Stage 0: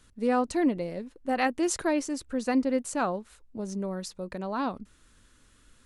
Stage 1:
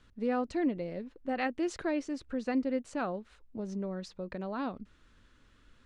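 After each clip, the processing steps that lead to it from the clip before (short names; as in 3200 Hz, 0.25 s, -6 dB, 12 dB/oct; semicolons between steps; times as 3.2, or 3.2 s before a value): in parallel at -2.5 dB: compressor, threshold -34 dBFS, peak gain reduction 13 dB; on the sum: dynamic EQ 970 Hz, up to -5 dB, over -43 dBFS, Q 2.2; LPF 3900 Hz 12 dB/oct; gain -6.5 dB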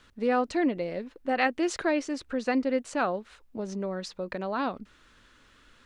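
low shelf 300 Hz -10.5 dB; gain +9 dB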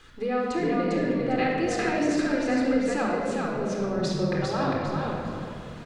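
compressor 3:1, threshold -35 dBFS, peak gain reduction 11.5 dB; frequency-shifting echo 0.401 s, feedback 31%, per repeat -42 Hz, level -3 dB; shoebox room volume 3300 m³, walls mixed, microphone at 3.9 m; gain +3 dB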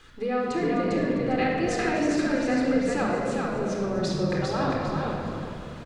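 frequency-shifting echo 0.254 s, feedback 51%, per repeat -68 Hz, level -14 dB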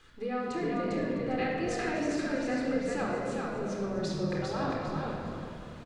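doubler 25 ms -11 dB; gain -6.5 dB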